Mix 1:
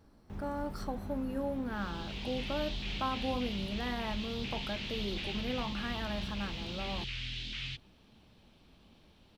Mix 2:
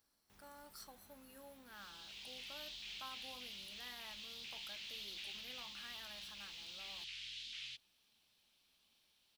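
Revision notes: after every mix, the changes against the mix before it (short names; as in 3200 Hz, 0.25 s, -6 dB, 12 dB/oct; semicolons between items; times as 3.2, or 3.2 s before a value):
master: add pre-emphasis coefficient 0.97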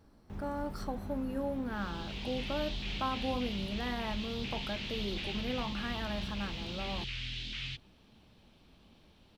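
master: remove pre-emphasis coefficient 0.97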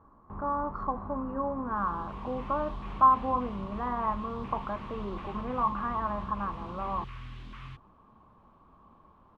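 background: remove LPF 4200 Hz 24 dB/oct; master: add synth low-pass 1100 Hz, resonance Q 11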